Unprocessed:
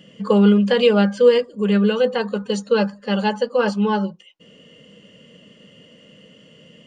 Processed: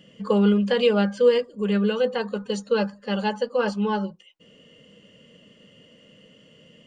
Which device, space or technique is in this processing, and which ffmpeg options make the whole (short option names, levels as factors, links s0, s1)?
low shelf boost with a cut just above: -af "lowshelf=f=81:g=6,equalizer=f=170:t=o:w=0.77:g=-2.5,volume=0.596"